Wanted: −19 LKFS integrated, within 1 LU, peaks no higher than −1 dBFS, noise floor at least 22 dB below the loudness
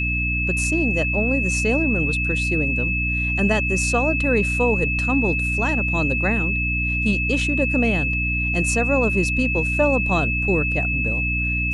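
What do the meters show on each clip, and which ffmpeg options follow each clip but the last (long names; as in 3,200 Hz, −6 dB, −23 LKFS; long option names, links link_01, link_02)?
mains hum 60 Hz; hum harmonics up to 300 Hz; level of the hum −23 dBFS; interfering tone 2,600 Hz; level of the tone −22 dBFS; integrated loudness −20.0 LKFS; sample peak −7.0 dBFS; target loudness −19.0 LKFS
→ -af "bandreject=frequency=60:width_type=h:width=6,bandreject=frequency=120:width_type=h:width=6,bandreject=frequency=180:width_type=h:width=6,bandreject=frequency=240:width_type=h:width=6,bandreject=frequency=300:width_type=h:width=6"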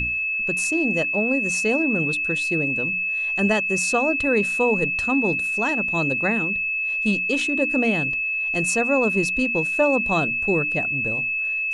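mains hum none found; interfering tone 2,600 Hz; level of the tone −22 dBFS
→ -af "bandreject=frequency=2600:width=30"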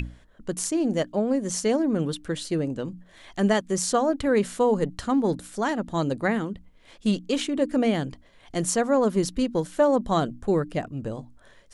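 interfering tone none found; integrated loudness −25.5 LKFS; sample peak −10.0 dBFS; target loudness −19.0 LKFS
→ -af "volume=6.5dB"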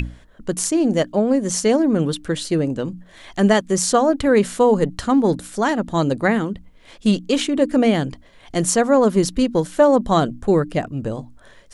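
integrated loudness −19.0 LKFS; sample peak −3.5 dBFS; background noise floor −48 dBFS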